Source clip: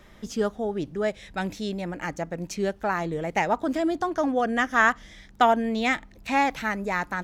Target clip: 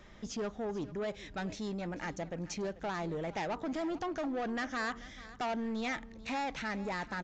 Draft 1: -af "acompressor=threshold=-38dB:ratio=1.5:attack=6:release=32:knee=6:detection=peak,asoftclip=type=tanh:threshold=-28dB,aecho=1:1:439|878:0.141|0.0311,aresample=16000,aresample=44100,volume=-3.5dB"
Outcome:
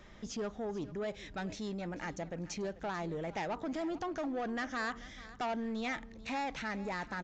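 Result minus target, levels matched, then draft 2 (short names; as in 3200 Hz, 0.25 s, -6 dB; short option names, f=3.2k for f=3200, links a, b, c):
compressor: peak gain reduction +2.5 dB
-af "acompressor=threshold=-30.5dB:ratio=1.5:attack=6:release=32:knee=6:detection=peak,asoftclip=type=tanh:threshold=-28dB,aecho=1:1:439|878:0.141|0.0311,aresample=16000,aresample=44100,volume=-3.5dB"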